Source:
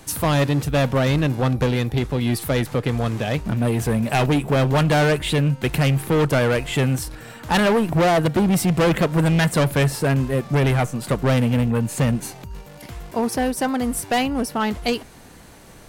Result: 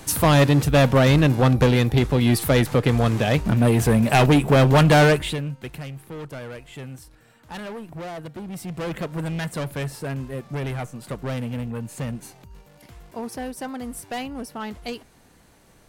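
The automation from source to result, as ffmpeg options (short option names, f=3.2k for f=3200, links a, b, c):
-af "volume=10dB,afade=t=out:st=5.04:d=0.34:silence=0.251189,afade=t=out:st=5.38:d=0.49:silence=0.398107,afade=t=in:st=8.46:d=0.57:silence=0.446684"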